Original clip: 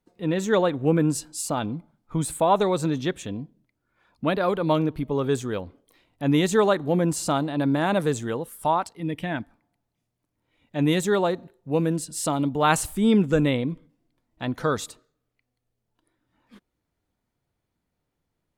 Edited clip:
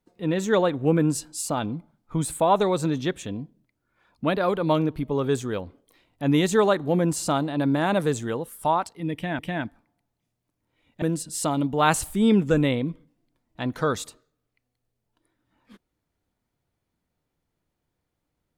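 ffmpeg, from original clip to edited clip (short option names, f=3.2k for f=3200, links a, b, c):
-filter_complex "[0:a]asplit=3[a][b][c];[a]atrim=end=9.392[d];[b]atrim=start=9.138:end=10.772[e];[c]atrim=start=11.838[f];[d][e]acrossfade=d=0.004:c1=hsin:c2=hsin[g];[g][f]acrossfade=d=0.004:c1=hsin:c2=hsin"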